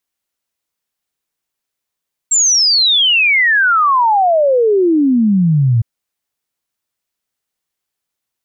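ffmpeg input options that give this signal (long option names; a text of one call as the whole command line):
ffmpeg -f lavfi -i "aevalsrc='0.376*clip(min(t,3.51-t)/0.01,0,1)*sin(2*PI*7600*3.51/log(110/7600)*(exp(log(110/7600)*t/3.51)-1))':duration=3.51:sample_rate=44100" out.wav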